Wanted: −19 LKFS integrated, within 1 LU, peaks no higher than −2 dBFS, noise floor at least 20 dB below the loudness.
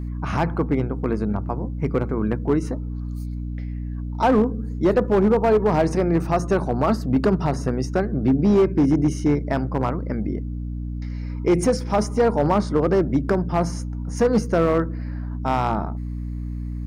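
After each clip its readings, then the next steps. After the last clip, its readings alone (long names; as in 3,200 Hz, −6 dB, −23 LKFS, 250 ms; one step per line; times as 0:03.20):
share of clipped samples 1.8%; peaks flattened at −12.0 dBFS; mains hum 60 Hz; hum harmonics up to 300 Hz; level of the hum −26 dBFS; integrated loudness −22.5 LKFS; sample peak −12.0 dBFS; target loudness −19.0 LKFS
→ clipped peaks rebuilt −12 dBFS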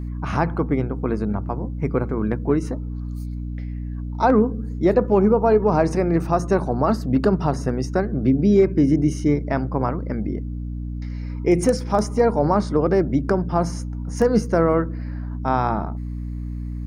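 share of clipped samples 0.0%; mains hum 60 Hz; hum harmonics up to 300 Hz; level of the hum −26 dBFS
→ hum removal 60 Hz, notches 5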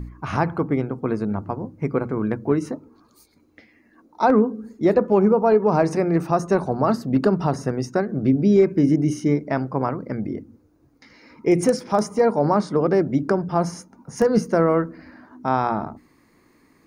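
mains hum none found; integrated loudness −21.5 LKFS; sample peak −5.5 dBFS; target loudness −19.0 LKFS
→ level +2.5 dB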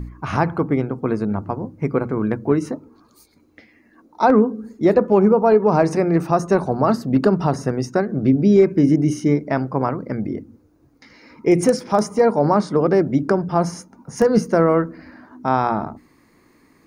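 integrated loudness −19.0 LKFS; sample peak −3.0 dBFS; background noise floor −56 dBFS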